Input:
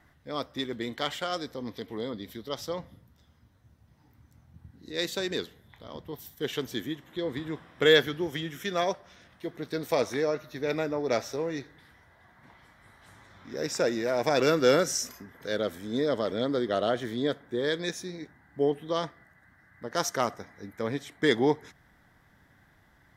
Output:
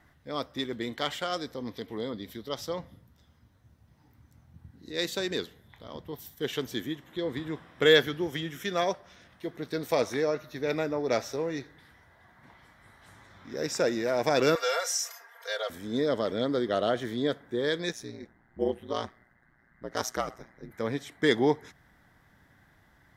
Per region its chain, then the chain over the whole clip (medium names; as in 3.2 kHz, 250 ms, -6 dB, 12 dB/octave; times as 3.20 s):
14.55–15.70 s: steep high-pass 570 Hz + comb 4.3 ms, depth 94% + compression 2:1, threshold -27 dBFS
17.92–20.71 s: ring modulator 59 Hz + tape noise reduction on one side only decoder only
whole clip: none